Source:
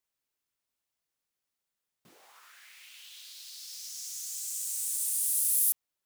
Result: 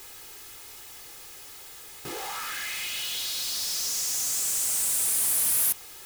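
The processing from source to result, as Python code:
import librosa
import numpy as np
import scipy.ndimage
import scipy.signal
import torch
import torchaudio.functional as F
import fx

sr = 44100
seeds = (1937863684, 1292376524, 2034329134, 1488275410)

y = x + 0.81 * np.pad(x, (int(2.4 * sr / 1000.0), 0))[:len(x)]
y = fx.power_curve(y, sr, exponent=0.35)
y = y * 10.0 ** (-6.5 / 20.0)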